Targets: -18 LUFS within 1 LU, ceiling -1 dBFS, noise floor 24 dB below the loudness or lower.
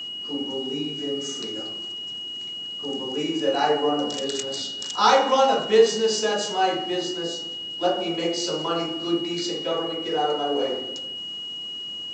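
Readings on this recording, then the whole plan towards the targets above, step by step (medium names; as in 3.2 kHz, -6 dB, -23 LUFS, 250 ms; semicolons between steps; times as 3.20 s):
steady tone 2.9 kHz; tone level -31 dBFS; loudness -24.5 LUFS; peak level -4.5 dBFS; loudness target -18.0 LUFS
-> band-stop 2.9 kHz, Q 30; trim +6.5 dB; peak limiter -1 dBFS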